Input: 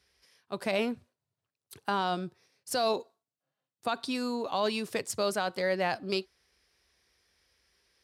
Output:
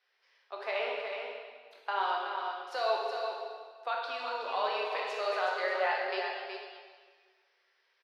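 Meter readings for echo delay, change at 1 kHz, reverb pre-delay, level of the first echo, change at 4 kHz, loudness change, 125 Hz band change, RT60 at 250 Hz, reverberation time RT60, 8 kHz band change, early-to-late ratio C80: 370 ms, +1.5 dB, 7 ms, −6.5 dB, −3.0 dB, −2.0 dB, below −40 dB, 1.7 s, 1.6 s, below −15 dB, 0.5 dB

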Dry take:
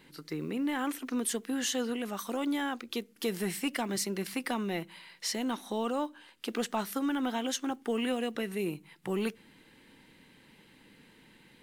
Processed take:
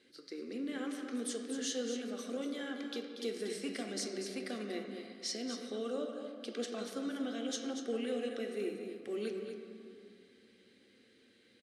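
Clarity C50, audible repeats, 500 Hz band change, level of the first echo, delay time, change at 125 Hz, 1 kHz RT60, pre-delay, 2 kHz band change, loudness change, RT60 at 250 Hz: 3.5 dB, 1, −3.0 dB, −8.5 dB, 237 ms, below −10 dB, 2.7 s, 3 ms, −8.0 dB, −6.0 dB, 3.2 s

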